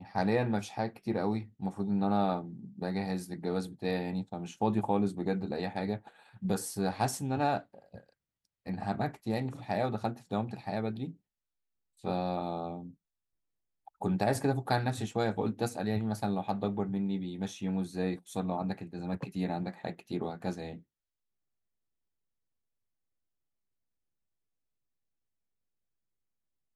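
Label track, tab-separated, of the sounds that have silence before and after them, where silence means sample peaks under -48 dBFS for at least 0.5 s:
8.660000	11.130000	sound
12.040000	12.910000	sound
13.870000	20.790000	sound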